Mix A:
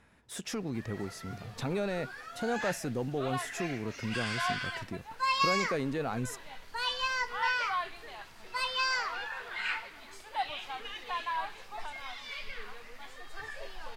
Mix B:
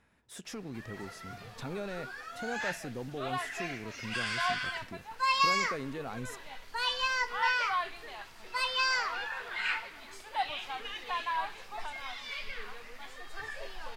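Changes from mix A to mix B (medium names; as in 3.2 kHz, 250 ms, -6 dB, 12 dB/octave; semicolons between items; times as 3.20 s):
speech -6.5 dB; reverb: on, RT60 0.40 s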